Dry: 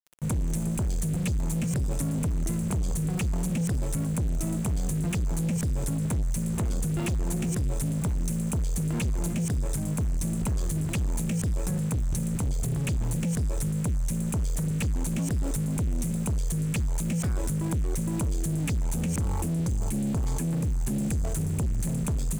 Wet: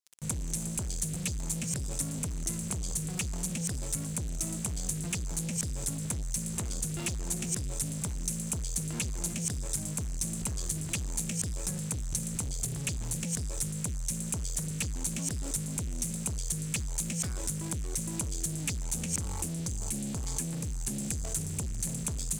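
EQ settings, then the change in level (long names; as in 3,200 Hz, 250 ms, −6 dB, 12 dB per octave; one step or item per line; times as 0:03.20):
parametric band 6,500 Hz +14.5 dB 2.6 octaves
−8.5 dB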